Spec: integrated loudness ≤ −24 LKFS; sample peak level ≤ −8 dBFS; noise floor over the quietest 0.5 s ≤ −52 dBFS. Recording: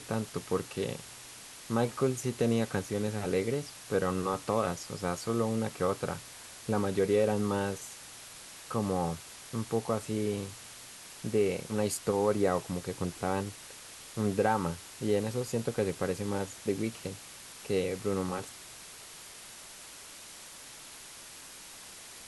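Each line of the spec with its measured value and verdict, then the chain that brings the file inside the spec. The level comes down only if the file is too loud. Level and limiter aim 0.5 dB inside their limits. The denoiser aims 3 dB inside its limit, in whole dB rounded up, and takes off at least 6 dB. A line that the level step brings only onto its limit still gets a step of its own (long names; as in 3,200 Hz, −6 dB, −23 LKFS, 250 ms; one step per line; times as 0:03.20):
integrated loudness −32.0 LKFS: in spec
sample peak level −13.0 dBFS: in spec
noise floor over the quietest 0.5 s −48 dBFS: out of spec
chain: broadband denoise 7 dB, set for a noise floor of −48 dBFS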